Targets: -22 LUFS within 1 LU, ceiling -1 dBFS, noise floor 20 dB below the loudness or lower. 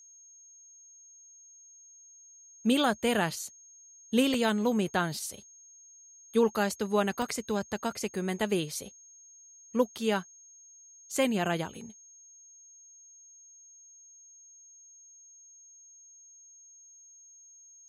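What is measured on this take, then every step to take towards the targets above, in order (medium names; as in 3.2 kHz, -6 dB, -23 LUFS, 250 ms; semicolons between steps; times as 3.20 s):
dropouts 4; longest dropout 2.3 ms; steady tone 6.5 kHz; tone level -52 dBFS; loudness -30.0 LUFS; peak level -13.0 dBFS; loudness target -22.0 LUFS
-> interpolate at 4.34/7.22/9.98/11.17 s, 2.3 ms; band-stop 6.5 kHz, Q 30; trim +8 dB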